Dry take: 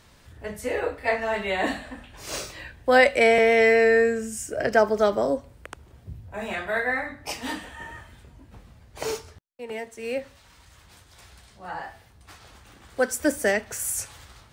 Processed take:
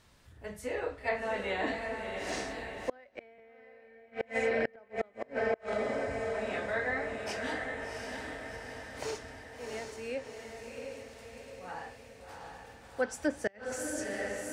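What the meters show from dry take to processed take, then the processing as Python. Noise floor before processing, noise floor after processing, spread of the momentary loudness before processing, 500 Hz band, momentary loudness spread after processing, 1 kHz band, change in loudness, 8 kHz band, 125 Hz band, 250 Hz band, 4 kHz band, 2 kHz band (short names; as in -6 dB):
-55 dBFS, -58 dBFS, 22 LU, -11.5 dB, 15 LU, -10.5 dB, -12.5 dB, -11.5 dB, -6.5 dB, -9.0 dB, -10.0 dB, -10.5 dB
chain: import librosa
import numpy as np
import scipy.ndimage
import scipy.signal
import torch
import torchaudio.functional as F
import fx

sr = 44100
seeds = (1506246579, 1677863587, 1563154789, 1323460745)

y = fx.echo_diffused(x, sr, ms=716, feedback_pct=58, wet_db=-4)
y = fx.env_lowpass_down(y, sr, base_hz=2600.0, full_db=-15.5)
y = fx.gate_flip(y, sr, shuts_db=-11.0, range_db=-31)
y = y * 10.0 ** (-8.0 / 20.0)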